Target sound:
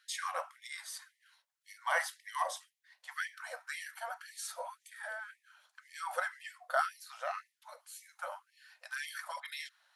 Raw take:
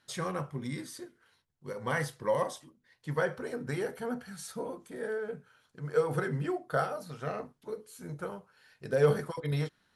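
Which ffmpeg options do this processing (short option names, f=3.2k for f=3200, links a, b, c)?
-af "afftfilt=real='re*gte(b*sr/1024,510*pow(1800/510,0.5+0.5*sin(2*PI*1.9*pts/sr)))':imag='im*gte(b*sr/1024,510*pow(1800/510,0.5+0.5*sin(2*PI*1.9*pts/sr)))':win_size=1024:overlap=0.75,volume=2dB"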